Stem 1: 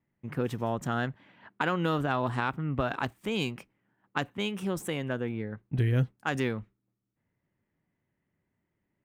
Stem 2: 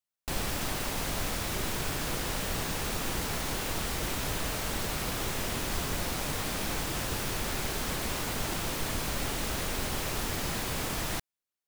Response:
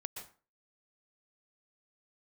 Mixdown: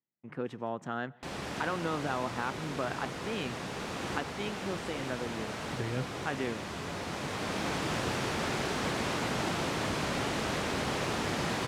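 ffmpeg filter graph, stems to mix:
-filter_complex "[0:a]agate=range=-12dB:threshold=-54dB:ratio=16:detection=peak,lowshelf=f=130:g=-11.5,volume=-4dB,asplit=3[a][b][c];[b]volume=-17.5dB[d];[1:a]adelay=950,volume=1dB,asplit=2[e][f];[f]volume=-4.5dB[g];[c]apad=whole_len=556870[h];[e][h]sidechaincompress=threshold=-45dB:ratio=8:attack=16:release=1130[i];[2:a]atrim=start_sample=2205[j];[d][g]amix=inputs=2:normalize=0[k];[k][j]afir=irnorm=-1:irlink=0[l];[a][i][l]amix=inputs=3:normalize=0,highpass=120,lowpass=7.6k,highshelf=f=3.4k:g=-8"

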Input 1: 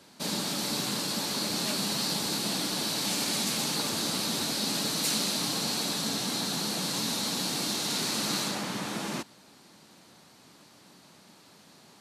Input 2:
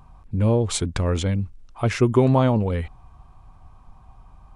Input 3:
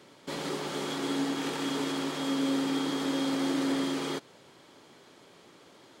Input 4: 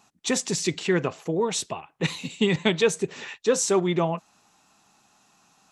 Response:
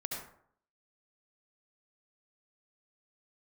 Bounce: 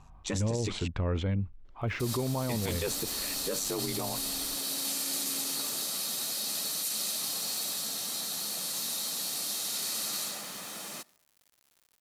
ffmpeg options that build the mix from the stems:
-filter_complex "[0:a]aemphasis=mode=production:type=bsi,aecho=1:1:1.6:0.31,acrusher=bits=6:mix=0:aa=0.000001,adelay=1800,volume=-10dB,asplit=2[a][b];[b]volume=-24dB[c];[1:a]lowpass=3.2k,volume=-6dB[d];[2:a]highshelf=f=3.6k:g=-12,adelay=1650,volume=-17dB[e];[3:a]aeval=exprs='val(0)*sin(2*PI*49*n/s)':c=same,volume=-4.5dB,asplit=3[f][g][h];[f]atrim=end=0.88,asetpts=PTS-STARTPTS,afade=t=out:st=0.876:d=0.004:c=hsin[i];[g]atrim=start=0.88:end=2.49,asetpts=PTS-STARTPTS,volume=0[j];[h]atrim=start=2.49,asetpts=PTS-STARTPTS,afade=t=in:d=0.004:c=hsin[k];[i][j][k]concat=n=3:v=0:a=1[l];[4:a]atrim=start_sample=2205[m];[c][m]afir=irnorm=-1:irlink=0[n];[a][d][e][l][n]amix=inputs=5:normalize=0,alimiter=limit=-22.5dB:level=0:latency=1:release=28"

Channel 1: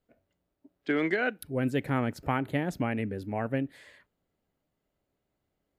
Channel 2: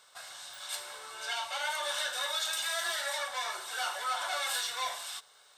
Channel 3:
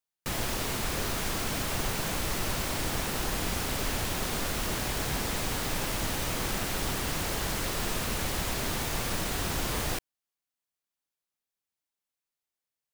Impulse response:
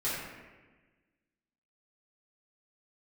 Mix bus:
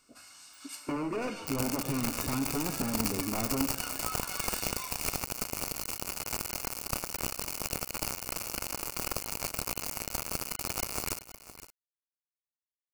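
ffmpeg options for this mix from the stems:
-filter_complex "[0:a]lowpass=f=1.4k:w=0.5412,lowpass=f=1.4k:w=1.3066,aeval=exprs='0.0422*(abs(mod(val(0)/0.0422+3,4)-2)-1)':c=same,volume=2dB,asplit=2[a][b];[b]volume=-18.5dB[c];[1:a]highpass=1.3k,volume=-4dB[d];[2:a]acrusher=bits=3:mix=0:aa=0.000001,adelay=1200,volume=-0.5dB,asplit=2[e][f];[f]volume=-15dB[g];[a][d]amix=inputs=2:normalize=0,equalizer=f=270:t=o:w=0.58:g=9.5,acompressor=threshold=-33dB:ratio=3,volume=0dB[h];[3:a]atrim=start_sample=2205[i];[c][i]afir=irnorm=-1:irlink=0[j];[g]aecho=0:1:514:1[k];[e][h][j][k]amix=inputs=4:normalize=0,superequalizer=11b=0.398:13b=0.251"

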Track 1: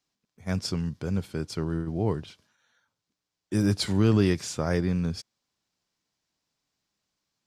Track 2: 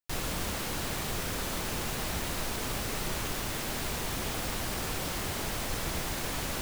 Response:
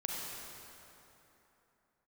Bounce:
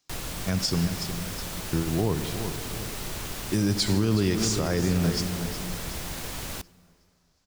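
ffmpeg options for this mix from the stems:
-filter_complex "[0:a]equalizer=f=5.9k:t=o:w=1.4:g=6,volume=2dB,asplit=3[a][b][c];[a]atrim=end=0.87,asetpts=PTS-STARTPTS,afade=t=out:st=0.866:d=0.004:c=hsin[d];[b]atrim=start=0.87:end=1.73,asetpts=PTS-STARTPTS,volume=0[e];[c]atrim=start=1.73,asetpts=PTS-STARTPTS,afade=t=in:d=0.004:c=hsin[f];[d][e][f]concat=n=3:v=0:a=1,asplit=3[g][h][i];[h]volume=-11.5dB[j];[i]volume=-10dB[k];[1:a]acrossover=split=180|3000[l][m][n];[m]acompressor=threshold=-38dB:ratio=6[o];[l][o][n]amix=inputs=3:normalize=0,volume=-0.5dB,asplit=2[p][q];[q]volume=-24dB[r];[2:a]atrim=start_sample=2205[s];[j][r]amix=inputs=2:normalize=0[t];[t][s]afir=irnorm=-1:irlink=0[u];[k]aecho=0:1:367|734|1101|1468|1835|2202:1|0.42|0.176|0.0741|0.0311|0.0131[v];[g][p][u][v]amix=inputs=4:normalize=0,alimiter=limit=-14.5dB:level=0:latency=1:release=95"

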